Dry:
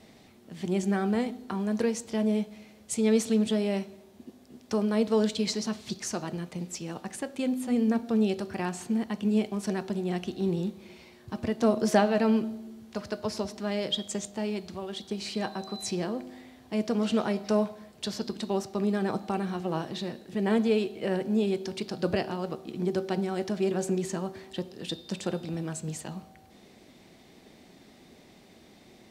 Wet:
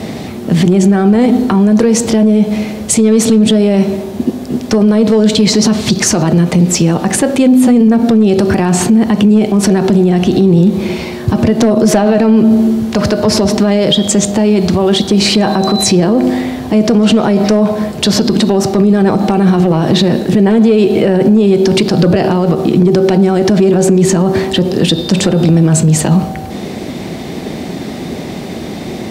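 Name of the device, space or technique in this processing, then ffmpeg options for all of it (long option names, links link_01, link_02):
mastering chain: -af "highpass=53,equalizer=frequency=160:width_type=o:width=0.23:gain=3.5,acompressor=threshold=-30dB:ratio=2.5,asoftclip=type=tanh:threshold=-19.5dB,tiltshelf=frequency=920:gain=3.5,asoftclip=type=hard:threshold=-21.5dB,alimiter=level_in=31dB:limit=-1dB:release=50:level=0:latency=1,volume=-1dB"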